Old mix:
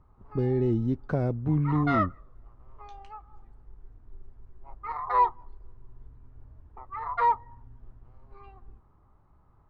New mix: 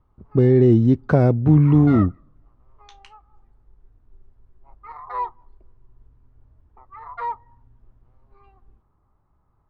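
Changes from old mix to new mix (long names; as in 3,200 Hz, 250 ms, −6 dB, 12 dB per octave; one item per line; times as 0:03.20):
speech +11.5 dB
background −4.5 dB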